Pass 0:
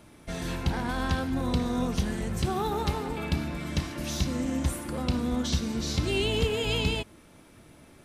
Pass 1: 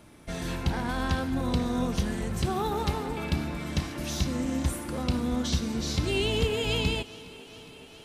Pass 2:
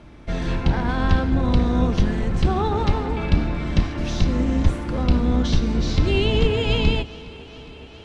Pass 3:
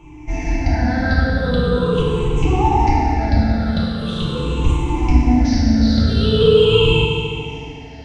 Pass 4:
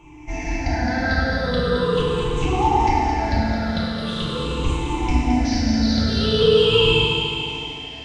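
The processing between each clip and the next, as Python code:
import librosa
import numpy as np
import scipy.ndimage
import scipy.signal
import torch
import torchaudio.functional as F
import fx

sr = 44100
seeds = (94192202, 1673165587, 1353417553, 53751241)

y1 = fx.echo_thinned(x, sr, ms=412, feedback_pct=77, hz=160.0, wet_db=-19)
y2 = fx.octave_divider(y1, sr, octaves=2, level_db=2.0)
y2 = fx.air_absorb(y2, sr, metres=140.0)
y2 = y2 * librosa.db_to_amplitude(6.5)
y3 = fx.spec_ripple(y2, sr, per_octave=0.69, drift_hz=-0.42, depth_db=22)
y3 = fx.rev_fdn(y3, sr, rt60_s=2.1, lf_ratio=1.1, hf_ratio=0.95, size_ms=20.0, drr_db=-4.5)
y3 = y3 * librosa.db_to_amplitude(-6.5)
y4 = fx.low_shelf(y3, sr, hz=360.0, db=-7.0)
y4 = fx.echo_thinned(y4, sr, ms=217, feedback_pct=65, hz=530.0, wet_db=-6)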